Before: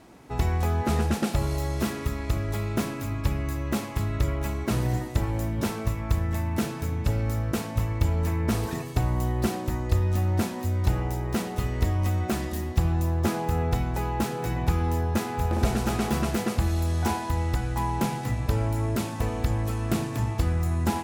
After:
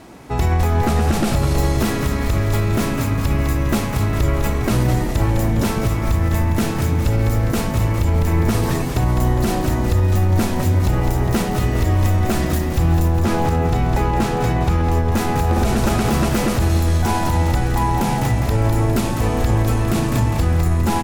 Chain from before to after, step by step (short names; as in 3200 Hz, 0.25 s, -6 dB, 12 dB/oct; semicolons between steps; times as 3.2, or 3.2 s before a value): 13.12–15.12 high shelf 9800 Hz -10 dB; frequency-shifting echo 0.203 s, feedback 58%, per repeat -87 Hz, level -9 dB; maximiser +17.5 dB; gain -7.5 dB